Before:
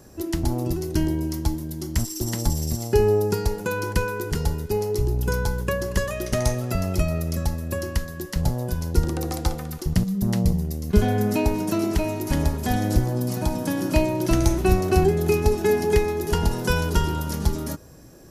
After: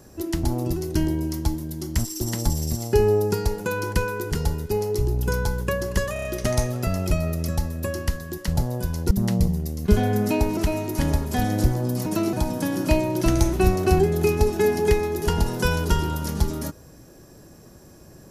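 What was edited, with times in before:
0:06.13: stutter 0.03 s, 5 plays
0:08.99–0:10.16: remove
0:11.62–0:11.89: move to 0:13.38

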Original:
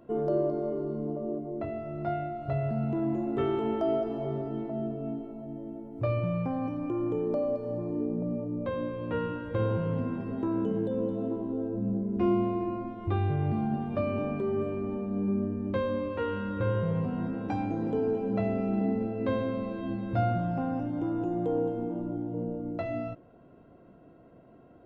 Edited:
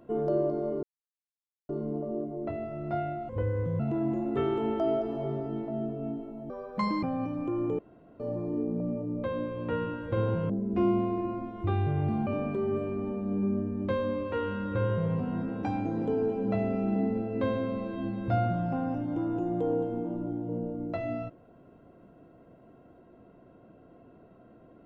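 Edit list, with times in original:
0:00.83: splice in silence 0.86 s
0:02.43–0:02.81: play speed 75%
0:05.51–0:06.45: play speed 177%
0:07.21–0:07.62: fill with room tone
0:09.92–0:11.93: remove
0:13.70–0:14.12: remove

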